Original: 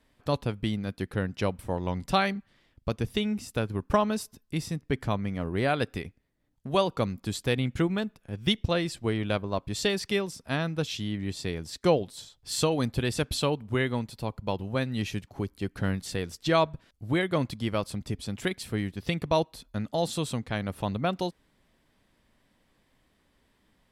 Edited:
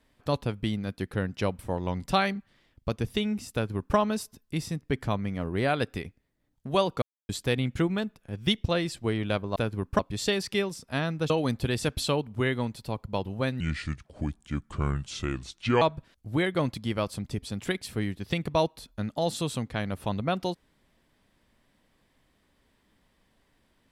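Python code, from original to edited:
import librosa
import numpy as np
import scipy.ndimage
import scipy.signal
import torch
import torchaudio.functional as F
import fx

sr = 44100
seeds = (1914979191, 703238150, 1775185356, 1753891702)

y = fx.edit(x, sr, fx.duplicate(start_s=3.53, length_s=0.43, to_s=9.56),
    fx.silence(start_s=7.02, length_s=0.27),
    fx.cut(start_s=10.87, length_s=1.77),
    fx.speed_span(start_s=14.94, length_s=1.64, speed=0.74), tone=tone)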